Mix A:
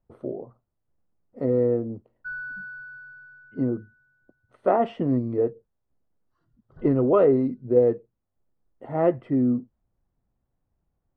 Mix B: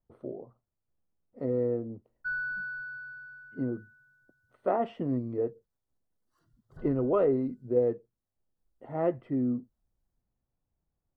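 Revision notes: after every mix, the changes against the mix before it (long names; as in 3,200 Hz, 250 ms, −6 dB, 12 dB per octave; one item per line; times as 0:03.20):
speech −7.0 dB
background: remove high-frequency loss of the air 190 metres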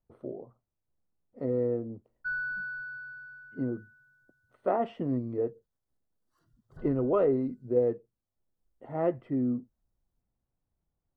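nothing changed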